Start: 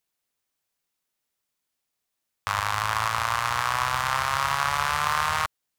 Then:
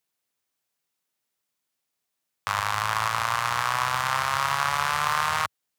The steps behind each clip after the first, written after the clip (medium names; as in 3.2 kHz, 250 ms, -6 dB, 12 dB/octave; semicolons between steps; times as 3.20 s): high-pass 94 Hz 24 dB/octave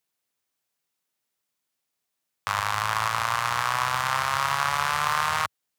no audible change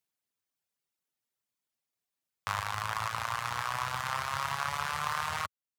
reverb removal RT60 0.85 s; bass shelf 150 Hz +6 dB; trim -6 dB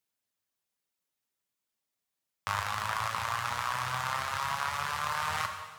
gain riding 0.5 s; gated-style reverb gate 470 ms falling, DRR 4.5 dB